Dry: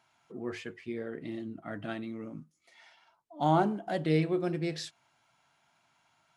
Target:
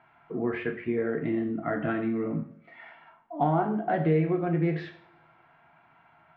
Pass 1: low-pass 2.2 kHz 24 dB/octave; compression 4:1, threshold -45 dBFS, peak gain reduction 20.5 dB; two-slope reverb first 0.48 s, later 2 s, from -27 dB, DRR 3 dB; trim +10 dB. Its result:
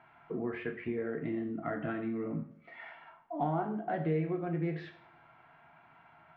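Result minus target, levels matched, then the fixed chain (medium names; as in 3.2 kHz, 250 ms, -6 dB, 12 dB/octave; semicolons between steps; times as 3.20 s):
compression: peak gain reduction +7.5 dB
low-pass 2.2 kHz 24 dB/octave; compression 4:1, threshold -35 dBFS, peak gain reduction 13 dB; two-slope reverb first 0.48 s, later 2 s, from -27 dB, DRR 3 dB; trim +10 dB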